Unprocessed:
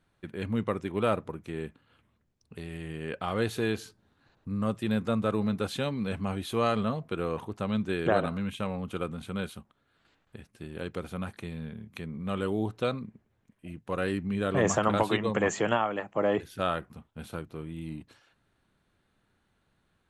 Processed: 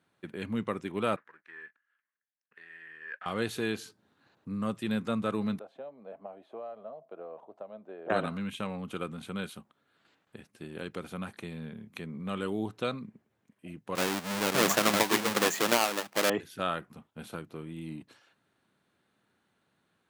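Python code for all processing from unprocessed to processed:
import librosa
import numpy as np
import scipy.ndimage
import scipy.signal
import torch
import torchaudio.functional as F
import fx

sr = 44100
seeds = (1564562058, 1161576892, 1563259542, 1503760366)

y = fx.chain(x, sr, fx.leveller(passes=2),
    fx.bandpass_q(hz=1700.0, q=7.3), at=(1.16, 3.26))
y = fx.chain(y, sr, fx.bandpass_q(hz=640.0, q=6.5),
    fx.band_squash(depth_pct=70), at=(5.59, 8.1))
y = fx.chain(y, sr, fx.halfwave_hold(),
    fx.highpass(hz=370.0, slope=6), at=(13.95, 16.3))
y = scipy.signal.sosfilt(scipy.signal.butter(2, 160.0, 'highpass', fs=sr, output='sos'), y)
y = fx.dynamic_eq(y, sr, hz=550.0, q=0.75, threshold_db=-40.0, ratio=4.0, max_db=-4)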